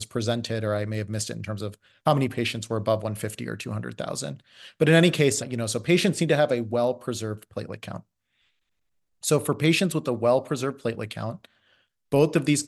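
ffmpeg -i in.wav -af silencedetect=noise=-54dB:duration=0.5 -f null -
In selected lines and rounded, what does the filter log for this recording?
silence_start: 8.03
silence_end: 9.22 | silence_duration: 1.19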